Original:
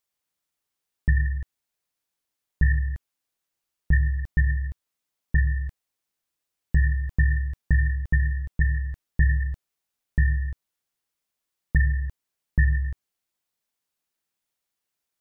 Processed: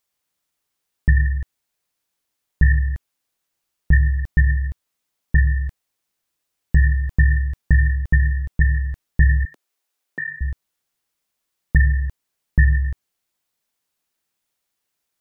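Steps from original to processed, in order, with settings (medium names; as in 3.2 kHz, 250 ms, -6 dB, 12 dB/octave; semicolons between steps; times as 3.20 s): 9.45–10.41 s: high-pass 290 Hz 24 dB/octave; trim +5.5 dB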